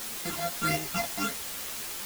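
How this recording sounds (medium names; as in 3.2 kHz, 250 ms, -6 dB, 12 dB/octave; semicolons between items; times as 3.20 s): a buzz of ramps at a fixed pitch in blocks of 64 samples; phasing stages 8, 1.6 Hz, lowest notch 320–1300 Hz; a quantiser's noise floor 6-bit, dither triangular; a shimmering, thickened sound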